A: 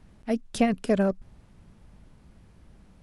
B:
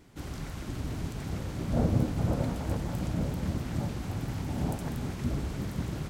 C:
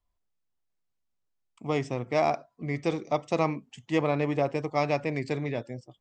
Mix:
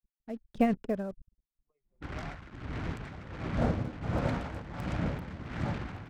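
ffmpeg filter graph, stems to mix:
ffmpeg -i stem1.wav -i stem2.wav -i stem3.wav -filter_complex "[0:a]lowpass=frequency=1800:poles=1,adynamicequalizer=threshold=0.0112:dfrequency=300:dqfactor=1.7:tfrequency=300:tqfactor=1.7:attack=5:release=100:ratio=0.375:range=2:mode=cutabove:tftype=bell,acrusher=bits=6:mix=0:aa=0.5,volume=-2dB[link_01];[1:a]equalizer=frequency=1700:width=0.63:gain=10,adelay=1850,volume=-1.5dB[link_02];[2:a]highpass=frequency=940:poles=1,volume=-17.5dB[link_03];[link_01][link_02][link_03]amix=inputs=3:normalize=0,anlmdn=0.631,tremolo=f=1.4:d=0.71" out.wav

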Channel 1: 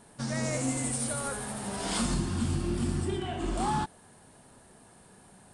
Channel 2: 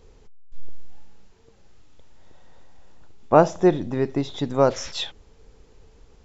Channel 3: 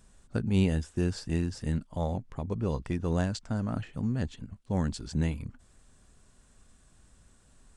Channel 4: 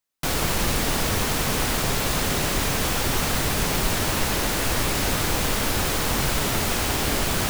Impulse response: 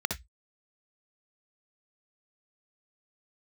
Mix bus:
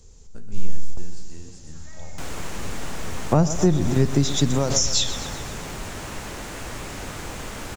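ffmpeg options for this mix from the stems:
-filter_complex "[0:a]highpass=1000,lowpass=3500,adelay=1550,volume=-17.5dB,asplit=2[link_01][link_02];[link_02]volume=-4.5dB[link_03];[1:a]bass=frequency=250:gain=10,treble=frequency=4000:gain=11,volume=2dB,asplit=2[link_04][link_05];[link_05]volume=-16dB[link_06];[2:a]flanger=delay=9.8:depth=6.7:regen=62:speed=1.9:shape=triangular,volume=-11dB,asplit=4[link_07][link_08][link_09][link_10];[link_08]volume=-19dB[link_11];[link_09]volume=-9dB[link_12];[3:a]acrossover=split=2900[link_13][link_14];[link_14]acompressor=threshold=-39dB:ratio=4:attack=1:release=60[link_15];[link_13][link_15]amix=inputs=2:normalize=0,adelay=1950,volume=-9.5dB[link_16];[link_10]apad=whole_len=275487[link_17];[link_04][link_17]sidechaingate=range=-9dB:threshold=-60dB:ratio=16:detection=peak[link_18];[4:a]atrim=start_sample=2205[link_19];[link_03][link_11]amix=inputs=2:normalize=0[link_20];[link_20][link_19]afir=irnorm=-1:irlink=0[link_21];[link_06][link_12]amix=inputs=2:normalize=0,aecho=0:1:125|250|375|500|625|750|875|1000|1125:1|0.57|0.325|0.185|0.106|0.0602|0.0343|0.0195|0.0111[link_22];[link_01][link_18][link_07][link_16][link_21][link_22]amix=inputs=6:normalize=0,equalizer=frequency=7100:width=1.1:gain=11.5,acrossover=split=170[link_23][link_24];[link_24]acompressor=threshold=-18dB:ratio=8[link_25];[link_23][link_25]amix=inputs=2:normalize=0"

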